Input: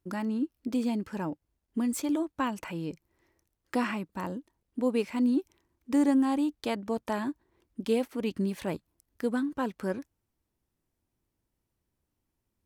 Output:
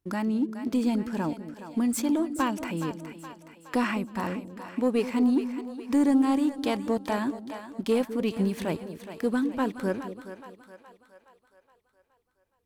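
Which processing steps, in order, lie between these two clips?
sample leveller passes 1; on a send: split-band echo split 510 Hz, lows 0.208 s, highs 0.419 s, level -10.5 dB

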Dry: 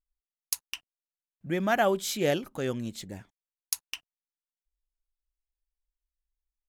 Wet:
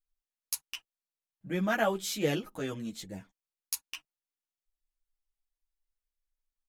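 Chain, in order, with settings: comb 6.3 ms, depth 31%; ensemble effect

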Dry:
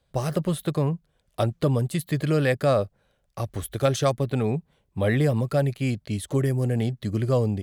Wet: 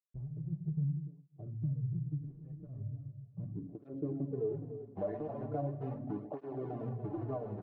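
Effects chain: Wiener smoothing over 25 samples; companded quantiser 4-bit; reverb RT60 0.55 s, pre-delay 3 ms, DRR 4 dB; low-pass sweep 130 Hz -> 710 Hz, 3.06–4.94; de-hum 60.55 Hz, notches 13; compressor, threshold -28 dBFS, peak gain reduction 13.5 dB; low shelf 130 Hz -4 dB; comb 6.9 ms, depth 44%; feedback echo 0.292 s, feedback 21%, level -11 dB; tape flanging out of phase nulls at 0.39 Hz, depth 7.8 ms; gain -4.5 dB

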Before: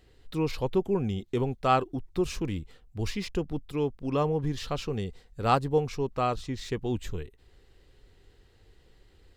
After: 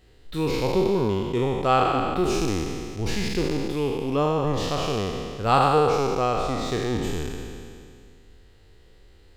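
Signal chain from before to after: spectral trails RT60 2.29 s; gain +1.5 dB

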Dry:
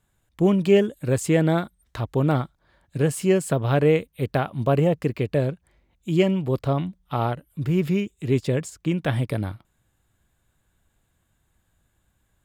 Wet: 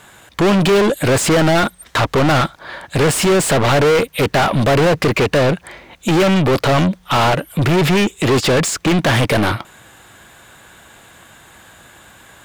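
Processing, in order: overdrive pedal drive 40 dB, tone 4000 Hz, clips at -6.5 dBFS

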